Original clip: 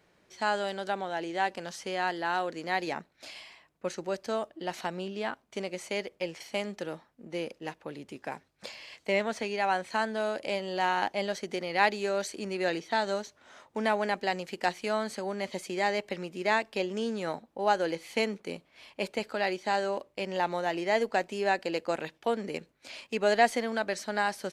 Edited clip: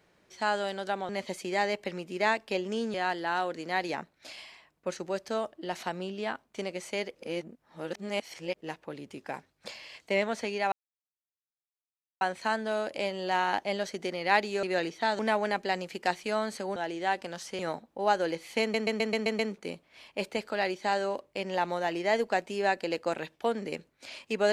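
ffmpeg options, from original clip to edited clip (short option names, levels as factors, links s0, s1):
-filter_complex "[0:a]asplit=16[s0][s1][s2][s3][s4][s5][s6][s7][s8][s9][s10][s11][s12][s13][s14][s15];[s0]atrim=end=1.092[s16];[s1]atrim=start=15.338:end=17.192[s17];[s2]atrim=start=1.918:end=6.132[s18];[s3]atrim=start=6.128:end=7.592,asetpts=PTS-STARTPTS,areverse[s19];[s4]atrim=start=7.588:end=9.7,asetpts=PTS-STARTPTS,afade=t=out:st=2.108:d=0.004:c=hsin,apad=pad_dur=1.49[s20];[s5]atrim=start=9.7:end=12.122,asetpts=PTS-STARTPTS,afade=t=in:d=0.004:c=hsin[s21];[s6]atrim=start=12.528:end=13.092[s22];[s7]atrim=start=13.768:end=15.342[s23];[s8]atrim=start=1.088:end=1.922[s24];[s9]atrim=start=17.188:end=18.342[s25];[s10]atrim=start=18.208:end=18.342[s26];[s11]atrim=start=18.208:end=18.342[s27];[s12]atrim=start=18.208:end=18.342[s28];[s13]atrim=start=18.208:end=18.342[s29];[s14]atrim=start=18.208:end=18.342[s30];[s15]atrim=start=18.208[s31];[s16][s17]acrossfade=d=0.004:c1=hsin:c2=hsin[s32];[s32][s18]acrossfade=d=0.004:c1=hsin:c2=hsin[s33];[s33][s19]acrossfade=d=0.004:c1=hsin:c2=hsin[s34];[s20][s21]concat=n=2:v=0:a=1[s35];[s34][s35]acrossfade=d=0.004:c1=hsin:c2=hsin[s36];[s36][s22]acrossfade=d=0.004:c1=hsin:c2=hsin[s37];[s37][s23]acrossfade=d=0.004:c1=hsin:c2=hsin[s38];[s38][s24]acrossfade=d=0.004:c1=hsin:c2=hsin[s39];[s39][s25]acrossfade=d=0.004:c1=hsin:c2=hsin[s40];[s40][s26]acrossfade=d=0.004:c1=hsin:c2=hsin[s41];[s41][s27]acrossfade=d=0.004:c1=hsin:c2=hsin[s42];[s42][s28]acrossfade=d=0.004:c1=hsin:c2=hsin[s43];[s43][s29]acrossfade=d=0.004:c1=hsin:c2=hsin[s44];[s44][s30]acrossfade=d=0.004:c1=hsin:c2=hsin[s45];[s45][s31]acrossfade=d=0.004:c1=hsin:c2=hsin"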